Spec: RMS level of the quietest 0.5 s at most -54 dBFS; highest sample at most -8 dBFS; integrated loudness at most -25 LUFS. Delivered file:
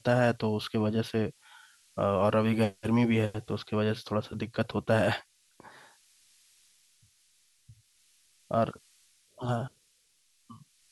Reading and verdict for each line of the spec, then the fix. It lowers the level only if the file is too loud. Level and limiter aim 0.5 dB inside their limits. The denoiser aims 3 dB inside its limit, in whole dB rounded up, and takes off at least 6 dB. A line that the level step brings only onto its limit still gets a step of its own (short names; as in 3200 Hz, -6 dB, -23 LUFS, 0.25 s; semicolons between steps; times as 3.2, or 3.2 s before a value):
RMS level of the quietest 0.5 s -69 dBFS: OK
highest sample -11.5 dBFS: OK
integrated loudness -29.5 LUFS: OK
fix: none